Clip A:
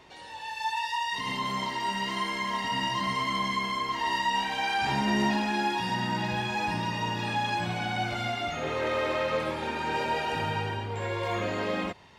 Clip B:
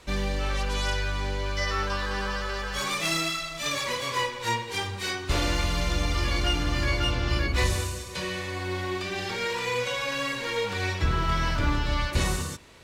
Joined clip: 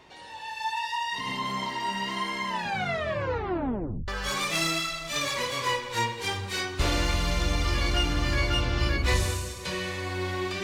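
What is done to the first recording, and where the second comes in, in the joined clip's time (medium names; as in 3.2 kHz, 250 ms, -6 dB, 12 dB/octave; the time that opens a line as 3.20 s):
clip A
2.46 s: tape stop 1.62 s
4.08 s: go over to clip B from 2.58 s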